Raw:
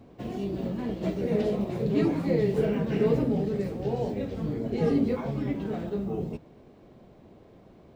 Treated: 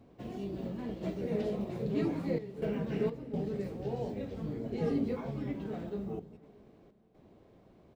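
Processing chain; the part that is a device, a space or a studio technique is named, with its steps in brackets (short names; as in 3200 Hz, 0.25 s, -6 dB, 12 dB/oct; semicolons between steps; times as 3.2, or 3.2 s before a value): trance gate with a delay (step gate "xxxxxxxxxx.xx.xx" 63 bpm -12 dB; feedback echo 0.31 s, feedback 57%, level -21.5 dB); gain -7 dB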